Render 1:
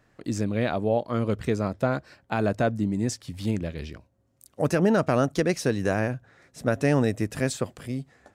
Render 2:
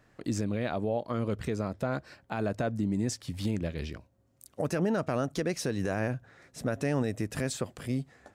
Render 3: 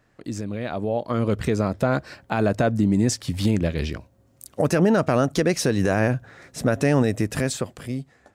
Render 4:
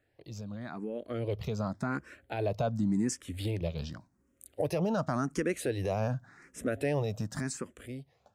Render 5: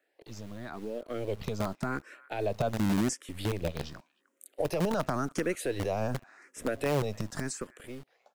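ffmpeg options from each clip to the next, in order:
-af "alimiter=limit=0.1:level=0:latency=1:release=166"
-af "dynaudnorm=f=220:g=9:m=3.16"
-filter_complex "[0:a]asplit=2[s0][s1];[s1]afreqshift=0.89[s2];[s0][s2]amix=inputs=2:normalize=1,volume=0.398"
-filter_complex "[0:a]acrossover=split=300|1200|2600[s0][s1][s2][s3];[s0]acrusher=bits=6:dc=4:mix=0:aa=0.000001[s4];[s2]aecho=1:1:307:0.168[s5];[s4][s1][s5][s3]amix=inputs=4:normalize=0,volume=1.12"

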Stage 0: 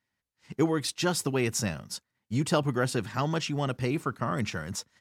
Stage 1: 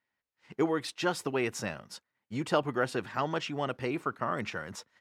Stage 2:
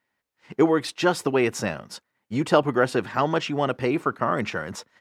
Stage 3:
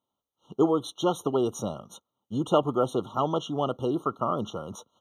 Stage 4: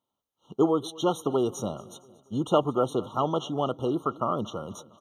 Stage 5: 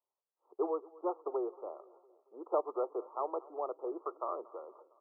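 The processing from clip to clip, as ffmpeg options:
-af "bass=f=250:g=-11,treble=f=4000:g=-11"
-af "equalizer=f=370:w=0.35:g=3.5,volume=2"
-af "afftfilt=real='re*eq(mod(floor(b*sr/1024/1400),2),0)':imag='im*eq(mod(floor(b*sr/1024/1400),2),0)':win_size=1024:overlap=0.75,volume=0.668"
-af "aecho=1:1:230|460|690|920:0.0841|0.0471|0.0264|0.0148"
-af "asuperpass=centerf=660:order=12:qfactor=0.75,volume=0.376"

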